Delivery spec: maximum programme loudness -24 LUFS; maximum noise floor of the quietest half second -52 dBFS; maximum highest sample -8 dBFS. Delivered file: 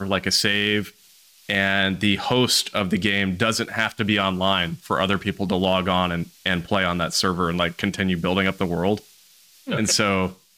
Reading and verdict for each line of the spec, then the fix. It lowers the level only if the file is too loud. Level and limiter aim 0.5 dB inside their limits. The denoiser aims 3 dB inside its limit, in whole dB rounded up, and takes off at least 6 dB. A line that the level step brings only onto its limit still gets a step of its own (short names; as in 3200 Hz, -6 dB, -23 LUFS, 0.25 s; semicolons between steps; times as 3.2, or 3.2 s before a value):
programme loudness -21.5 LUFS: fail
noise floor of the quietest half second -53 dBFS: OK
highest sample -7.5 dBFS: fail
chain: gain -3 dB